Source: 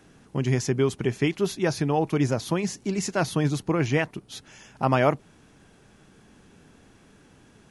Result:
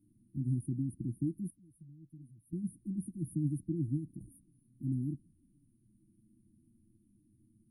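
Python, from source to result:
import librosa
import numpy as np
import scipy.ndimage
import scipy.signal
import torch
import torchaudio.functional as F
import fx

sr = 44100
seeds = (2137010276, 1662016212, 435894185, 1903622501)

y = fx.tone_stack(x, sr, knobs='6-0-2', at=(1.5, 2.53))
y = fx.env_flanger(y, sr, rest_ms=10.5, full_db=-22.5)
y = fx.brickwall_bandstop(y, sr, low_hz=350.0, high_hz=8900.0)
y = fx.sustainer(y, sr, db_per_s=120.0, at=(4.07, 4.82))
y = y * 10.0 ** (-8.0 / 20.0)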